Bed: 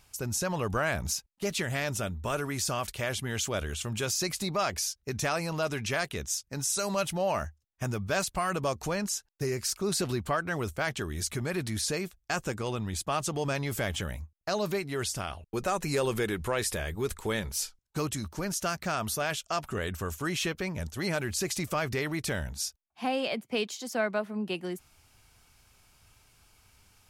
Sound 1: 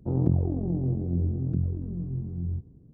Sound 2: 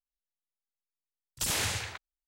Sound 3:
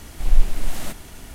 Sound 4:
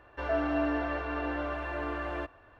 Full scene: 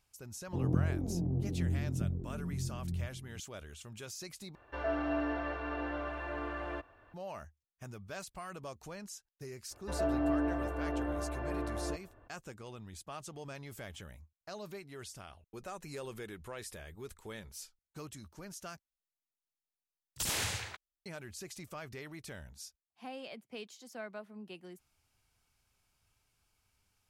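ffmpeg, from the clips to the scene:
-filter_complex "[4:a]asplit=2[s0][s1];[0:a]volume=0.178[s2];[1:a]aecho=1:1:521:0.282[s3];[s1]tiltshelf=f=930:g=7[s4];[s2]asplit=3[s5][s6][s7];[s5]atrim=end=4.554[s8];[s0]atrim=end=2.59,asetpts=PTS-STARTPTS,volume=0.596[s9];[s6]atrim=start=7.136:end=18.794[s10];[2:a]atrim=end=2.27,asetpts=PTS-STARTPTS,volume=0.631[s11];[s7]atrim=start=21.056[s12];[s3]atrim=end=2.93,asetpts=PTS-STARTPTS,volume=0.447,afade=t=in:d=0.004:c=hsin,afade=t=out:st=2.926:d=0.004:c=hsin,adelay=470[s13];[s4]atrim=end=2.59,asetpts=PTS-STARTPTS,volume=0.501,afade=t=in:d=0.02,afade=t=out:st=2.57:d=0.02,adelay=427770S[s14];[s8][s9]acrossfade=d=0.004:c1=hsin:c2=hsin[s15];[s15][s10]acrossfade=d=0.004:c1=hsin:c2=hsin[s16];[s16][s11]acrossfade=d=0.004:c1=hsin:c2=hsin[s17];[s17][s12]acrossfade=d=0.004:c1=hsin:c2=hsin[s18];[s18][s13][s14]amix=inputs=3:normalize=0"

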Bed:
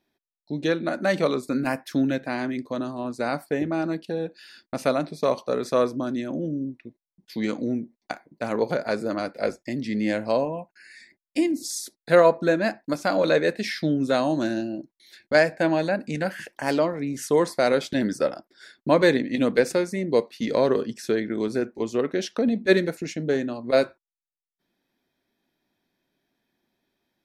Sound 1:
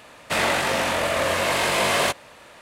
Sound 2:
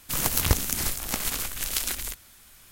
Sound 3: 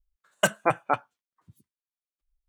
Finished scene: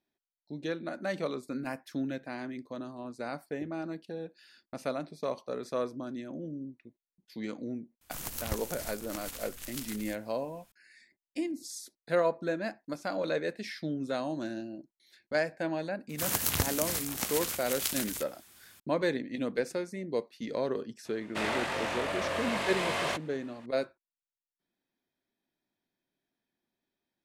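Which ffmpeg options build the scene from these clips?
-filter_complex "[2:a]asplit=2[s0][s1];[0:a]volume=0.282[s2];[s1]highpass=94[s3];[1:a]highshelf=f=8300:g=-11.5[s4];[s0]atrim=end=2.71,asetpts=PTS-STARTPTS,volume=0.211,afade=t=in:d=0.004:c=hsin,afade=t=out:st=2.706:d=0.004:c=hsin,adelay=8010[s5];[s3]atrim=end=2.71,asetpts=PTS-STARTPTS,volume=0.596,afade=t=in:d=0.004:c=hsin,afade=t=out:st=2.706:d=0.004:c=hsin,adelay=16090[s6];[s4]atrim=end=2.61,asetpts=PTS-STARTPTS,volume=0.316,afade=t=in:d=0.004:c=hsin,afade=t=out:st=2.606:d=0.004:c=hsin,adelay=21050[s7];[s2][s5][s6][s7]amix=inputs=4:normalize=0"

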